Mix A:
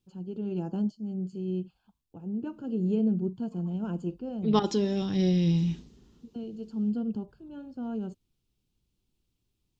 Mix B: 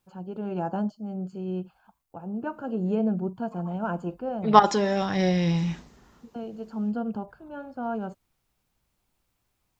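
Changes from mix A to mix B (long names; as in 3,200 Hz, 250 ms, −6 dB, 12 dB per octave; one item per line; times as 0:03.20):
second voice: add high-shelf EQ 6,100 Hz +11.5 dB
master: add flat-topped bell 1,100 Hz +14.5 dB 2.3 octaves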